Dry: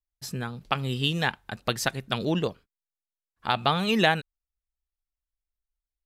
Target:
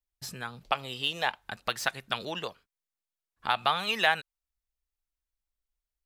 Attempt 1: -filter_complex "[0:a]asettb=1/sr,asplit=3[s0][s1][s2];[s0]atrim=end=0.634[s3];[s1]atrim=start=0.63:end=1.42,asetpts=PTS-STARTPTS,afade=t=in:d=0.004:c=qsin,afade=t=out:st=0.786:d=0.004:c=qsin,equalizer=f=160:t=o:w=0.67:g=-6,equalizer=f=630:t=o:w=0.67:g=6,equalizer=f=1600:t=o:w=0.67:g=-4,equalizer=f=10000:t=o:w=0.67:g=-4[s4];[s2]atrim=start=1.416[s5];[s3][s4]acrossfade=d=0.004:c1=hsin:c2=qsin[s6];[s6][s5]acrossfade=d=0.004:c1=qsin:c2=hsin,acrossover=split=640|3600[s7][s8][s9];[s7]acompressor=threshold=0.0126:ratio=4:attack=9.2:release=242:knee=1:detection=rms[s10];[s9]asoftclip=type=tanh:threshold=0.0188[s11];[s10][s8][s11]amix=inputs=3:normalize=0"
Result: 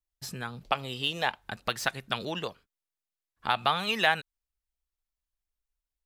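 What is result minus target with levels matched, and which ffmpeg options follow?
compression: peak gain reduction -5 dB
-filter_complex "[0:a]asettb=1/sr,asplit=3[s0][s1][s2];[s0]atrim=end=0.634[s3];[s1]atrim=start=0.63:end=1.42,asetpts=PTS-STARTPTS,afade=t=in:d=0.004:c=qsin,afade=t=out:st=0.786:d=0.004:c=qsin,equalizer=f=160:t=o:w=0.67:g=-6,equalizer=f=630:t=o:w=0.67:g=6,equalizer=f=1600:t=o:w=0.67:g=-4,equalizer=f=10000:t=o:w=0.67:g=-4[s4];[s2]atrim=start=1.416[s5];[s3][s4]acrossfade=d=0.004:c1=hsin:c2=qsin[s6];[s6][s5]acrossfade=d=0.004:c1=qsin:c2=hsin,acrossover=split=640|3600[s7][s8][s9];[s7]acompressor=threshold=0.00596:ratio=4:attack=9.2:release=242:knee=1:detection=rms[s10];[s9]asoftclip=type=tanh:threshold=0.0188[s11];[s10][s8][s11]amix=inputs=3:normalize=0"

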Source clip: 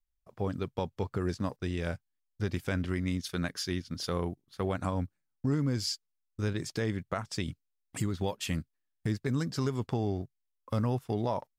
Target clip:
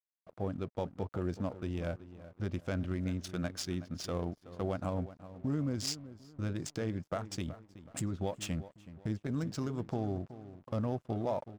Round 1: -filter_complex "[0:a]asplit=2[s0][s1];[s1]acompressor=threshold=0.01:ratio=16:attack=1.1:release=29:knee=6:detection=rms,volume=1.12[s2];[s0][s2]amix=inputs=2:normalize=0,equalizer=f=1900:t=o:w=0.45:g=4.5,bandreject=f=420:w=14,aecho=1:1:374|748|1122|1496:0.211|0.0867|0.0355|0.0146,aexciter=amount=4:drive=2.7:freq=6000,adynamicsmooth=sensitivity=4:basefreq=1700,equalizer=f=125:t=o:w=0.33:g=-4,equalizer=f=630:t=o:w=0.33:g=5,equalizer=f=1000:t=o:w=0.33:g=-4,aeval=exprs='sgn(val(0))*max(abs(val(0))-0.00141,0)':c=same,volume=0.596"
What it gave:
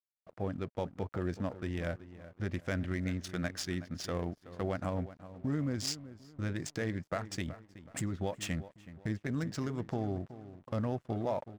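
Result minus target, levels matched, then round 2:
2 kHz band +5.5 dB
-filter_complex "[0:a]asplit=2[s0][s1];[s1]acompressor=threshold=0.01:ratio=16:attack=1.1:release=29:knee=6:detection=rms,volume=1.12[s2];[s0][s2]amix=inputs=2:normalize=0,equalizer=f=1900:t=o:w=0.45:g=-6.5,bandreject=f=420:w=14,aecho=1:1:374|748|1122|1496:0.211|0.0867|0.0355|0.0146,aexciter=amount=4:drive=2.7:freq=6000,adynamicsmooth=sensitivity=4:basefreq=1700,equalizer=f=125:t=o:w=0.33:g=-4,equalizer=f=630:t=o:w=0.33:g=5,equalizer=f=1000:t=o:w=0.33:g=-4,aeval=exprs='sgn(val(0))*max(abs(val(0))-0.00141,0)':c=same,volume=0.596"

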